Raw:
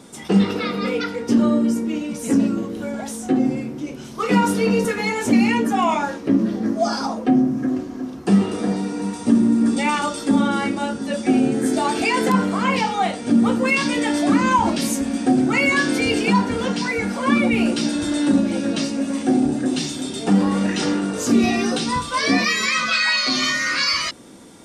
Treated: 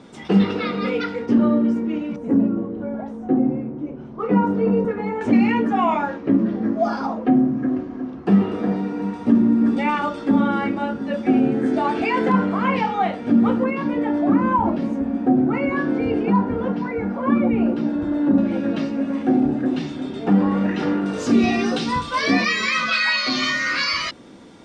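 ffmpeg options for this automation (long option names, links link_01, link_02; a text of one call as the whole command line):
ffmpeg -i in.wav -af "asetnsamples=nb_out_samples=441:pad=0,asendcmd='1.26 lowpass f 2200;2.16 lowpass f 1000;5.21 lowpass f 2200;13.64 lowpass f 1100;18.38 lowpass f 2000;21.06 lowpass f 4300',lowpass=3700" out.wav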